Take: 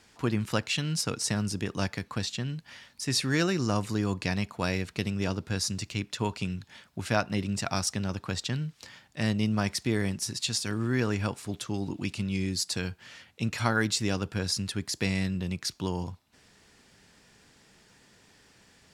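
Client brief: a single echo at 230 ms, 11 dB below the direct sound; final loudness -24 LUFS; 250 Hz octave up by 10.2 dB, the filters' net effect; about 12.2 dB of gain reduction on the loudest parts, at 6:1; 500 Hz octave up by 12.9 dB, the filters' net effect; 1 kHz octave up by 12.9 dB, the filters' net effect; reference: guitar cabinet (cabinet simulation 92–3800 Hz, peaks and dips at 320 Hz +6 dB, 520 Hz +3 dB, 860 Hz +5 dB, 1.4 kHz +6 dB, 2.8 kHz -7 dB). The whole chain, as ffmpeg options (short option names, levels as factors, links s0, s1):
-af "equalizer=f=250:t=o:g=8,equalizer=f=500:t=o:g=8,equalizer=f=1000:t=o:g=9,acompressor=threshold=0.0447:ratio=6,highpass=92,equalizer=f=320:t=q:w=4:g=6,equalizer=f=520:t=q:w=4:g=3,equalizer=f=860:t=q:w=4:g=5,equalizer=f=1400:t=q:w=4:g=6,equalizer=f=2800:t=q:w=4:g=-7,lowpass=f=3800:w=0.5412,lowpass=f=3800:w=1.3066,aecho=1:1:230:0.282,volume=2.24"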